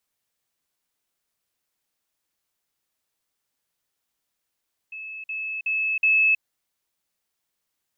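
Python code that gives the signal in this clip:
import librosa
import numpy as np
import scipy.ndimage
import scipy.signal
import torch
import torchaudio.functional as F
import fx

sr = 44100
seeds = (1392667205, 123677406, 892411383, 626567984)

y = fx.level_ladder(sr, hz=2600.0, from_db=-33.5, step_db=6.0, steps=4, dwell_s=0.32, gap_s=0.05)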